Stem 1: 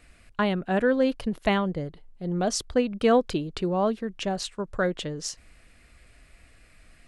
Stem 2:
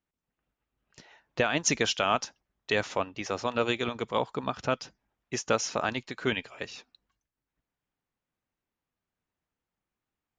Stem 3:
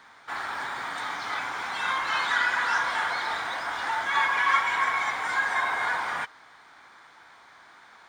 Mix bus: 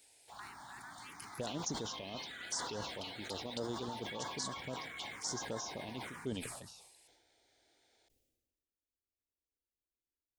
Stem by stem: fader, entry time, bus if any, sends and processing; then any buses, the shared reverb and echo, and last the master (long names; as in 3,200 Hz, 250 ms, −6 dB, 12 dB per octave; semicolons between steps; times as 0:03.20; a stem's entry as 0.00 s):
−3.0 dB, 0.00 s, no bus, no send, Butterworth high-pass 1,100 Hz; high-shelf EQ 3,700 Hz +8.5 dB; downward compressor 6 to 1, threshold −32 dBFS, peak gain reduction 12.5 dB
−8.5 dB, 0.00 s, bus A, no send, no processing
−7.5 dB, 0.00 s, bus A, no send, no processing
bus A: 0.0 dB, brickwall limiter −23.5 dBFS, peak gain reduction 6 dB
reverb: not used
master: parametric band 1,500 Hz −15 dB 1.8 octaves; phaser swept by the level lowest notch 170 Hz, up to 2,500 Hz, full sweep at −36.5 dBFS; level that may fall only so fast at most 43 dB per second